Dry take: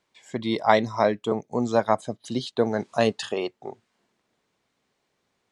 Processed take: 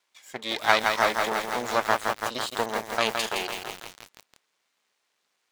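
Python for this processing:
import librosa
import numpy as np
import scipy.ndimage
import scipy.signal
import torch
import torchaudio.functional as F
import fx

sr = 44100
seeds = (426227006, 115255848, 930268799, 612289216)

y = np.maximum(x, 0.0)
y = fx.highpass(y, sr, hz=1400.0, slope=6)
y = fx.echo_crushed(y, sr, ms=166, feedback_pct=80, bits=7, wet_db=-4)
y = y * 10.0 ** (7.0 / 20.0)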